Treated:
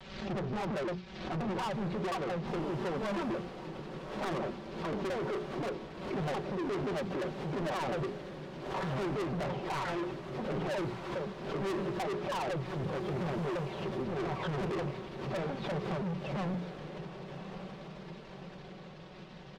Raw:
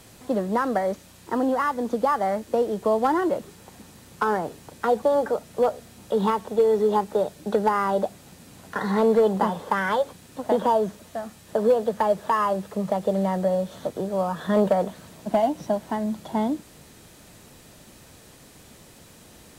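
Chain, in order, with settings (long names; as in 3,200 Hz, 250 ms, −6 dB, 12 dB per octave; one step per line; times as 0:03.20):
pitch shifter swept by a sawtooth −9.5 semitones, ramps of 176 ms
mains-hum notches 60/120/180/240/300/360/420 Hz
leveller curve on the samples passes 2
low-pass filter 4,100 Hz 24 dB per octave
comb filter 5.3 ms, depth 79%
soft clipping −25.5 dBFS, distortion −5 dB
feedback delay with all-pass diffusion 1,149 ms, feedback 60%, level −10 dB
pitch vibrato 0.46 Hz 28 cents
background raised ahead of every attack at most 61 dB per second
level −7.5 dB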